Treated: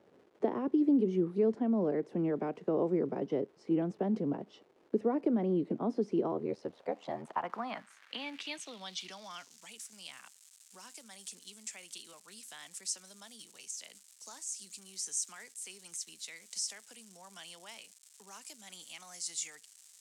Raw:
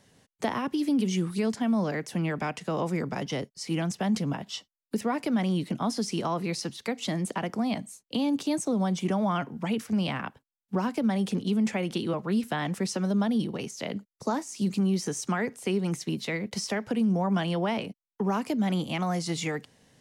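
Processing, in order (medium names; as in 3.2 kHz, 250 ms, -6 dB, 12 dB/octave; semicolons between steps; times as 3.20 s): 6.31–7.45 s: ring modulator 40 Hz; crackle 470 per s -39 dBFS; band-pass sweep 390 Hz -> 7.9 kHz, 6.38–9.73 s; trim +4.5 dB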